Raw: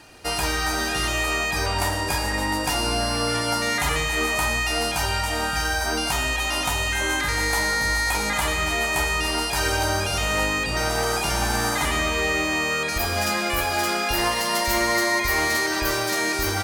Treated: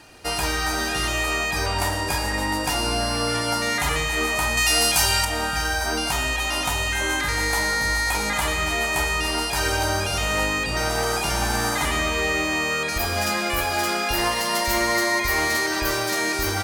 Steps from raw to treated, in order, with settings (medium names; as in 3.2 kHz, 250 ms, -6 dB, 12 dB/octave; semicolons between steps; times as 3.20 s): 4.57–5.25 s: treble shelf 3.1 kHz +11.5 dB